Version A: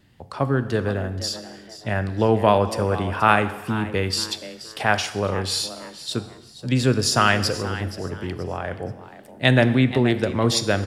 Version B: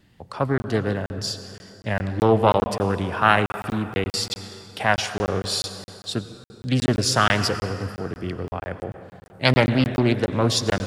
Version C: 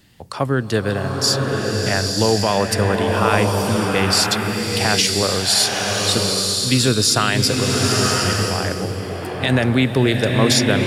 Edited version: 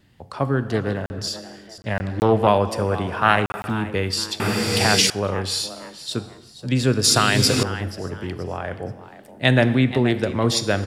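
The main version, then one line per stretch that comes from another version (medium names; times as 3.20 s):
A
0.70–1.27 s: from B
1.78–2.47 s: from B
3.07–3.70 s: from B
4.40–5.10 s: from C
7.04–7.63 s: from C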